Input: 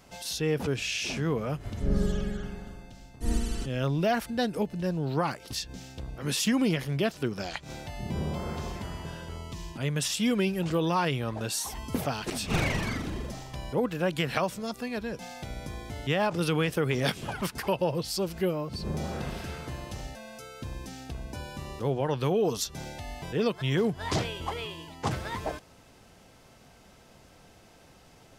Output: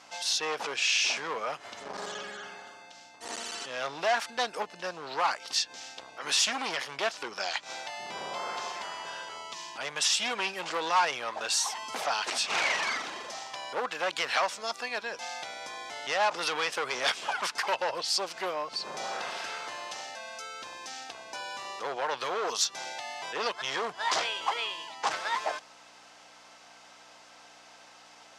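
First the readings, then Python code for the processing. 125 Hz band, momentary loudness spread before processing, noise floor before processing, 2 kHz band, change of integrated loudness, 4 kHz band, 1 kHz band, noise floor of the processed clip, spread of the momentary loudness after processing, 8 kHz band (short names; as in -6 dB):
-27.0 dB, 13 LU, -56 dBFS, +4.5 dB, -0.5 dB, +5.5 dB, +4.0 dB, -54 dBFS, 14 LU, +4.0 dB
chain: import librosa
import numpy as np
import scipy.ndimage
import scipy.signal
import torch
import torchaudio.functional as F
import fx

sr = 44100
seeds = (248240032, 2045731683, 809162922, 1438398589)

y = fx.add_hum(x, sr, base_hz=60, snr_db=14)
y = np.clip(10.0 ** (25.0 / 20.0) * y, -1.0, 1.0) / 10.0 ** (25.0 / 20.0)
y = scipy.signal.sosfilt(scipy.signal.cheby1(2, 1.0, [860.0, 6400.0], 'bandpass', fs=sr, output='sos'), y)
y = F.gain(torch.from_numpy(y), 7.0).numpy()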